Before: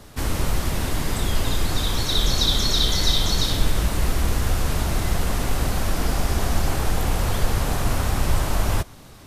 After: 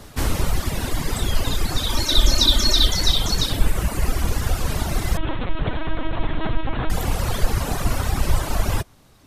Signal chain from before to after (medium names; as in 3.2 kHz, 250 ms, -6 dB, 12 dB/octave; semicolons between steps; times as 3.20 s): reverb removal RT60 1.8 s; 1.89–2.88 s: comb 3.3 ms, depth 77%; 5.17–6.90 s: LPC vocoder at 8 kHz pitch kept; trim +3.5 dB